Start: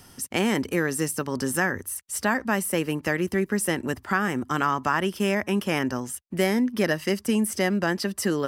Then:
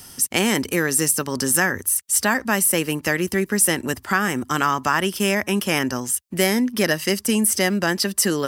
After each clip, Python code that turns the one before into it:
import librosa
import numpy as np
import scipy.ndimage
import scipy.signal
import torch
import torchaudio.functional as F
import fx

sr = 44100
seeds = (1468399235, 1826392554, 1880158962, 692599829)

y = fx.high_shelf(x, sr, hz=3200.0, db=10.5)
y = y * 10.0 ** (2.5 / 20.0)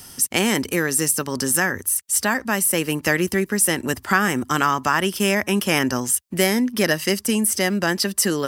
y = fx.rider(x, sr, range_db=10, speed_s=0.5)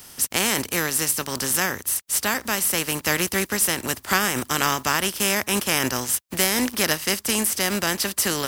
y = fx.spec_flatten(x, sr, power=0.52)
y = y * 10.0 ** (-2.5 / 20.0)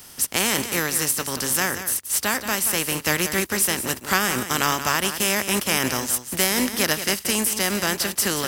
y = x + 10.0 ** (-10.5 / 20.0) * np.pad(x, (int(179 * sr / 1000.0), 0))[:len(x)]